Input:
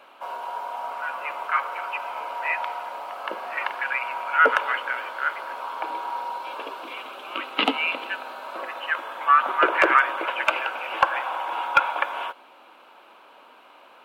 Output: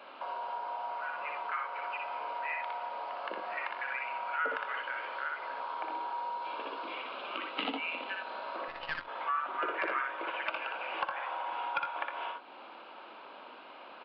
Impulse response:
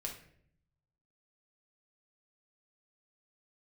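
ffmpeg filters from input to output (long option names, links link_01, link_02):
-filter_complex "[0:a]highpass=frequency=130:width=0.5412,highpass=frequency=130:width=1.3066,lowshelf=frequency=250:gain=5,aecho=1:1:60|82:0.668|0.237,asettb=1/sr,asplit=3[link_01][link_02][link_03];[link_01]atrim=end=8.684[link_04];[link_02]atrim=start=8.68:end=9.08,asetpts=PTS-STARTPTS,afade=type=in:duration=0.004:curve=qsin,afade=type=out:start_time=0.396:duration=0.004:curve=qsin,aeval=exprs='0.251*(cos(1*acos(clip(val(0)/0.251,-1,1)))-cos(1*PI/2))+0.0282*(cos(4*acos(clip(val(0)/0.251,-1,1)))-cos(4*PI/2))+0.0224*(cos(7*acos(clip(val(0)/0.251,-1,1)))-cos(7*PI/2))':channel_layout=same[link_05];[link_03]atrim=start=9.076[link_06];[link_04][link_05]acrossfade=duration=0.004:curve1=hsin:curve2=qsin[link_07];[link_07][link_06]acrossfade=duration=0.004:curve1=qsin:curve2=hsin,acompressor=threshold=-38dB:ratio=2.5,aresample=11025,aresample=44100,volume=-1dB"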